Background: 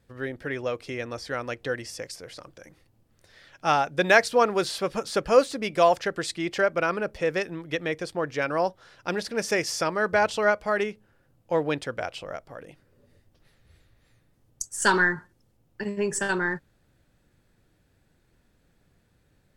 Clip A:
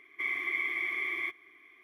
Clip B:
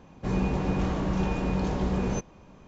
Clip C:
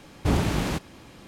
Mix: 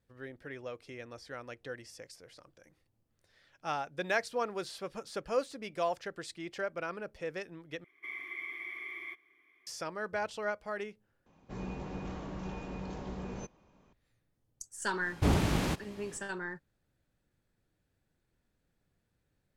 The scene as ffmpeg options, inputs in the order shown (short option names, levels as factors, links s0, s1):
-filter_complex "[0:a]volume=0.224[s0];[2:a]lowshelf=f=220:g=-4[s1];[s0]asplit=3[s2][s3][s4];[s2]atrim=end=7.844[s5];[1:a]atrim=end=1.83,asetpts=PTS-STARTPTS,volume=0.335[s6];[s3]atrim=start=9.666:end=11.264[s7];[s1]atrim=end=2.67,asetpts=PTS-STARTPTS,volume=0.266[s8];[s4]atrim=start=13.926[s9];[3:a]atrim=end=1.27,asetpts=PTS-STARTPTS,volume=0.631,afade=t=in:d=0.1,afade=t=out:st=1.17:d=0.1,adelay=14970[s10];[s5][s6]acrossfade=d=0.004:c1=hsin:c2=hsin[s11];[s11][s7]acrossfade=d=0.004:c1=hsin:c2=hsin[s12];[s12][s8]acrossfade=d=0.004:c1=hsin:c2=hsin[s13];[s13][s9]acrossfade=d=0.004:c1=hsin:c2=hsin[s14];[s14][s10]amix=inputs=2:normalize=0"